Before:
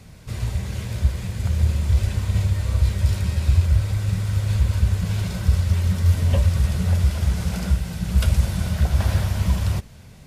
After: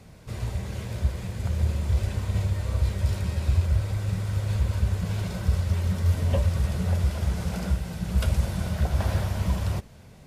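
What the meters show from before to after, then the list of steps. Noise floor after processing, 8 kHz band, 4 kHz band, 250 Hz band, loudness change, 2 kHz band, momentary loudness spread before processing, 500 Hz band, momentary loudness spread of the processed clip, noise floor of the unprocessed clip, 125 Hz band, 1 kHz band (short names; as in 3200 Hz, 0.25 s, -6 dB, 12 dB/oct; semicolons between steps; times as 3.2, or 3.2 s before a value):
-48 dBFS, -6.0 dB, -5.5 dB, -3.5 dB, -5.0 dB, -4.0 dB, 6 LU, 0.0 dB, 6 LU, -44 dBFS, -5.0 dB, -1.5 dB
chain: bell 540 Hz +6 dB 2.7 oct; gain -6 dB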